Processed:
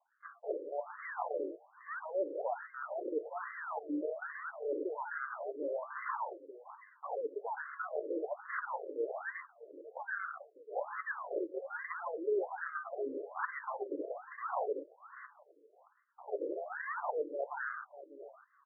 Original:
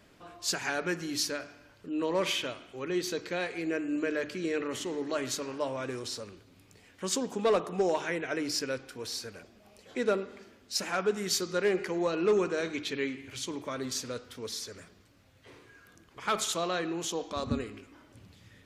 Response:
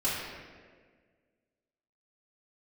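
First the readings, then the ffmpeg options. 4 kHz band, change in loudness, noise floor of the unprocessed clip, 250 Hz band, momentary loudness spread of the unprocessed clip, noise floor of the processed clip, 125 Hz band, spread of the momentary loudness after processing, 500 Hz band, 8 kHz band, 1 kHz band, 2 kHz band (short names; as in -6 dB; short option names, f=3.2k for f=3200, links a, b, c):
under -40 dB, -7.5 dB, -60 dBFS, -11.5 dB, 12 LU, -68 dBFS, under -40 dB, 14 LU, -6.0 dB, under -40 dB, -2.0 dB, -4.5 dB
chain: -filter_complex "[0:a]highpass=f=180:w=0.5412,highpass=f=180:w=1.3066,agate=range=-22dB:threshold=-49dB:ratio=16:detection=peak,aecho=1:1:6.9:0.4,areverse,acompressor=threshold=-41dB:ratio=16,areverse,asuperstop=centerf=1600:order=12:qfactor=2.5,aexciter=amount=1.4:drive=9.6:freq=9.6k,acrusher=samples=32:mix=1:aa=0.000001:lfo=1:lforange=32:lforate=0.8,crystalizer=i=5.5:c=0,asplit=2[a][b];[b]adelay=599,lowpass=f=4.4k:p=1,volume=-15dB,asplit=2[c][d];[d]adelay=599,lowpass=f=4.4k:p=1,volume=0.18[e];[c][e]amix=inputs=2:normalize=0[f];[a][f]amix=inputs=2:normalize=0,afftfilt=real='re*between(b*sr/1024,400*pow(1500/400,0.5+0.5*sin(2*PI*1.2*pts/sr))/1.41,400*pow(1500/400,0.5+0.5*sin(2*PI*1.2*pts/sr))*1.41)':imag='im*between(b*sr/1024,400*pow(1500/400,0.5+0.5*sin(2*PI*1.2*pts/sr))/1.41,400*pow(1500/400,0.5+0.5*sin(2*PI*1.2*pts/sr))*1.41)':win_size=1024:overlap=0.75,volume=11.5dB"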